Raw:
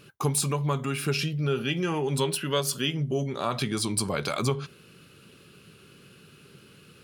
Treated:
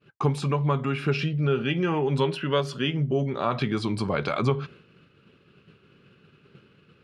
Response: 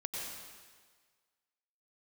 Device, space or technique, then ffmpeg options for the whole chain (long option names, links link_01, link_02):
hearing-loss simulation: -af "lowpass=2700,agate=range=-33dB:threshold=-47dB:ratio=3:detection=peak,volume=3dB"